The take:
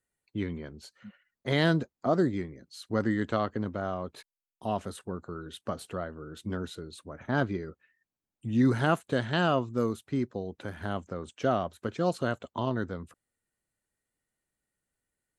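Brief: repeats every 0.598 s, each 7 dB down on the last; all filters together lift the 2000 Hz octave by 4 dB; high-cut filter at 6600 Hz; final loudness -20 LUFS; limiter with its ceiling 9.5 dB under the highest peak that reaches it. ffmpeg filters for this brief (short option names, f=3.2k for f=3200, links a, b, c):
-af "lowpass=6.6k,equalizer=f=2k:t=o:g=5.5,alimiter=limit=-19dB:level=0:latency=1,aecho=1:1:598|1196|1794|2392|2990:0.447|0.201|0.0905|0.0407|0.0183,volume=13.5dB"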